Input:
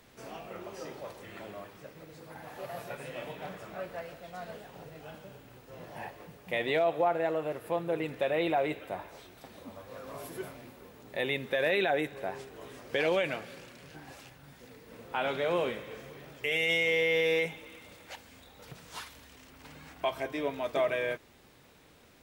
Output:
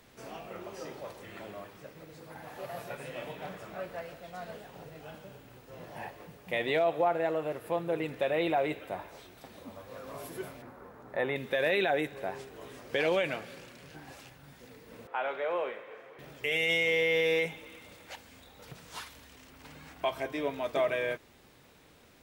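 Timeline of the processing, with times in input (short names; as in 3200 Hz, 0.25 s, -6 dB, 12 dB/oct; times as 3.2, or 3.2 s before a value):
10.62–11.36 EQ curve 370 Hz 0 dB, 760 Hz +5 dB, 1400 Hz +7 dB, 2800 Hz -10 dB
15.07–16.19 three-band isolator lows -22 dB, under 400 Hz, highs -18 dB, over 2500 Hz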